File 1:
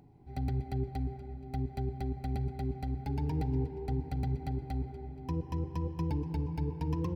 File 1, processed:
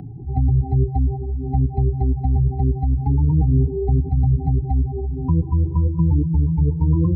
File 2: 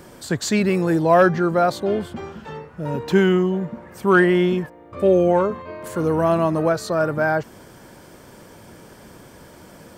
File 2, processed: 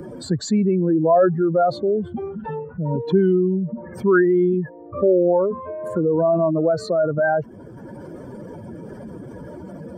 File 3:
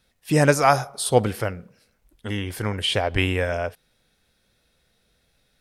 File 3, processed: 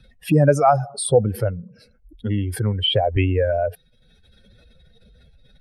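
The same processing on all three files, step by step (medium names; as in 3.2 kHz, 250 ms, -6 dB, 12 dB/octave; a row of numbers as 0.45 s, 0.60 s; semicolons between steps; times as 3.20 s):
spectral contrast enhancement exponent 2.2; three bands compressed up and down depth 40%; normalise loudness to -20 LUFS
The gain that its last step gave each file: +16.5 dB, +1.0 dB, +4.0 dB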